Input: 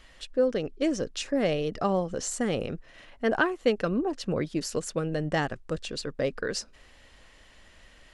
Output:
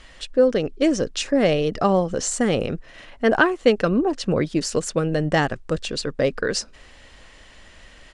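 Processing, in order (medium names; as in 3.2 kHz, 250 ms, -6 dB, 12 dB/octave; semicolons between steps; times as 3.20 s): resampled via 22.05 kHz; trim +7.5 dB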